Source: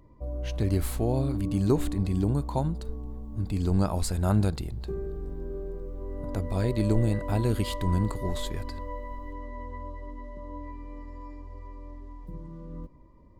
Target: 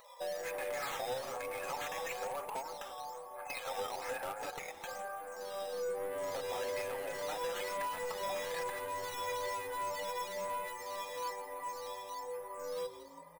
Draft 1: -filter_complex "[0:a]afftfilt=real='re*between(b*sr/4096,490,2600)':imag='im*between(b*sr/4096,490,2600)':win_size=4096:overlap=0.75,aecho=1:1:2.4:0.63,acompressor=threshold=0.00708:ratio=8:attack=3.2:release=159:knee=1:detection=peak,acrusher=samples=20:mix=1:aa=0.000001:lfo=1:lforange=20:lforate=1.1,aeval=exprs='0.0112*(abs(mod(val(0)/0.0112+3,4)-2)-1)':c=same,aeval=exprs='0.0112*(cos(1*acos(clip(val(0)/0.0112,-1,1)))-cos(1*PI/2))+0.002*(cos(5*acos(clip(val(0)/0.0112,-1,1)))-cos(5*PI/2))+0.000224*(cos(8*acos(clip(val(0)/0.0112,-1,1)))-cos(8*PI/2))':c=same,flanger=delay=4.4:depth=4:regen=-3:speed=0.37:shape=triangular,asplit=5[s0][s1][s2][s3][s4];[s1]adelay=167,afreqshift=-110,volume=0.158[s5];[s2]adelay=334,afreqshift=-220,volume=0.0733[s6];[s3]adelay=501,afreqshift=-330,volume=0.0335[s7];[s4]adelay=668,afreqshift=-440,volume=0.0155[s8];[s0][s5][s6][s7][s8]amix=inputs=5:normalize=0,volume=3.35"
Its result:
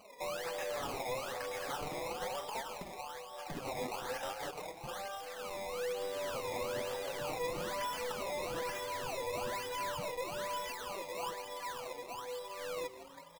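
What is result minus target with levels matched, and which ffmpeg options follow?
decimation with a swept rate: distortion +11 dB
-filter_complex "[0:a]afftfilt=real='re*between(b*sr/4096,490,2600)':imag='im*between(b*sr/4096,490,2600)':win_size=4096:overlap=0.75,aecho=1:1:2.4:0.63,acompressor=threshold=0.00708:ratio=8:attack=3.2:release=159:knee=1:detection=peak,acrusher=samples=7:mix=1:aa=0.000001:lfo=1:lforange=7:lforate=1.1,aeval=exprs='0.0112*(abs(mod(val(0)/0.0112+3,4)-2)-1)':c=same,aeval=exprs='0.0112*(cos(1*acos(clip(val(0)/0.0112,-1,1)))-cos(1*PI/2))+0.002*(cos(5*acos(clip(val(0)/0.0112,-1,1)))-cos(5*PI/2))+0.000224*(cos(8*acos(clip(val(0)/0.0112,-1,1)))-cos(8*PI/2))':c=same,flanger=delay=4.4:depth=4:regen=-3:speed=0.37:shape=triangular,asplit=5[s0][s1][s2][s3][s4];[s1]adelay=167,afreqshift=-110,volume=0.158[s5];[s2]adelay=334,afreqshift=-220,volume=0.0733[s6];[s3]adelay=501,afreqshift=-330,volume=0.0335[s7];[s4]adelay=668,afreqshift=-440,volume=0.0155[s8];[s0][s5][s6][s7][s8]amix=inputs=5:normalize=0,volume=3.35"

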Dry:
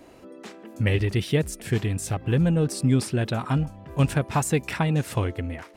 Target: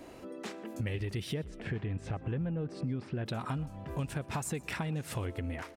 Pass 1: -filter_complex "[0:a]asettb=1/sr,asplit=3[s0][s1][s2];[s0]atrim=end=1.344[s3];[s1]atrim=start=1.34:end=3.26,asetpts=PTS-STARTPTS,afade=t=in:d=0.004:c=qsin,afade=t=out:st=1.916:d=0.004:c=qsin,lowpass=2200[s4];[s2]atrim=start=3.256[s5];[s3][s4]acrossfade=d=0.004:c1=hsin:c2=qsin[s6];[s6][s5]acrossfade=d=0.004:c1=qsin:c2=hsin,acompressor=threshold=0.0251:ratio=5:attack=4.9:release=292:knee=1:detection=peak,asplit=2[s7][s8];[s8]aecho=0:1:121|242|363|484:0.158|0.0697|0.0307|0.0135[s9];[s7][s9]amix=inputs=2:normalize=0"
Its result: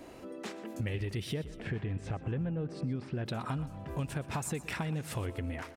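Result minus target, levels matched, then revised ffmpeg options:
echo-to-direct +7.5 dB
-filter_complex "[0:a]asettb=1/sr,asplit=3[s0][s1][s2];[s0]atrim=end=1.344[s3];[s1]atrim=start=1.34:end=3.26,asetpts=PTS-STARTPTS,afade=t=in:d=0.004:c=qsin,afade=t=out:st=1.916:d=0.004:c=qsin,lowpass=2200[s4];[s2]atrim=start=3.256[s5];[s3][s4]acrossfade=d=0.004:c1=hsin:c2=qsin[s6];[s6][s5]acrossfade=d=0.004:c1=qsin:c2=hsin,acompressor=threshold=0.0251:ratio=5:attack=4.9:release=292:knee=1:detection=peak,asplit=2[s7][s8];[s8]aecho=0:1:121|242|363:0.0668|0.0294|0.0129[s9];[s7][s9]amix=inputs=2:normalize=0"

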